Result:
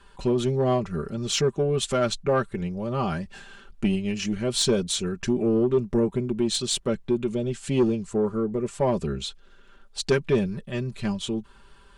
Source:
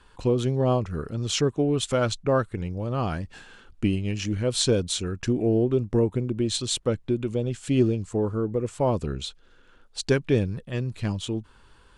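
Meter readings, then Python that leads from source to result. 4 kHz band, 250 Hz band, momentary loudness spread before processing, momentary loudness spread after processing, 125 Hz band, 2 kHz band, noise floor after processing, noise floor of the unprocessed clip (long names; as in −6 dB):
+1.0 dB, +0.5 dB, 8 LU, 8 LU, −3.5 dB, +1.0 dB, −53 dBFS, −55 dBFS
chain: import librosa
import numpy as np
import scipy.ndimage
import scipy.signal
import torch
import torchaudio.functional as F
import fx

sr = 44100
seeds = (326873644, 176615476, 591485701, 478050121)

y = x + 0.71 * np.pad(x, (int(5.1 * sr / 1000.0), 0))[:len(x)]
y = 10.0 ** (-13.0 / 20.0) * np.tanh(y / 10.0 ** (-13.0 / 20.0))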